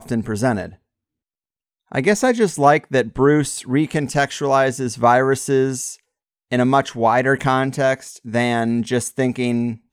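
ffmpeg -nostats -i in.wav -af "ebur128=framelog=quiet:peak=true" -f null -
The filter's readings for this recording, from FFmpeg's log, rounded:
Integrated loudness:
  I:         -18.6 LUFS
  Threshold: -28.8 LUFS
Loudness range:
  LRA:         2.1 LU
  Threshold: -38.7 LUFS
  LRA low:   -19.6 LUFS
  LRA high:  -17.5 LUFS
True peak:
  Peak:       -1.4 dBFS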